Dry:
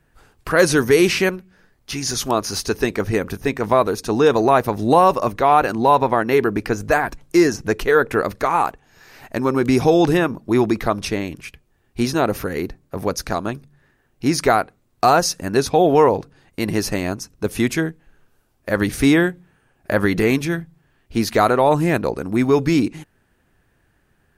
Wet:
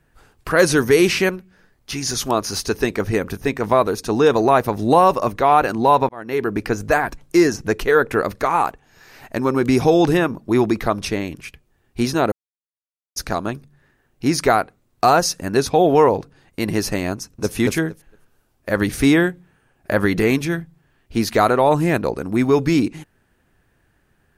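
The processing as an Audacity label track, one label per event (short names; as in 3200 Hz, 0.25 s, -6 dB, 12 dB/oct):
6.090000	6.610000	fade in
12.320000	13.160000	mute
17.150000	17.550000	echo throw 0.23 s, feedback 15%, level -1.5 dB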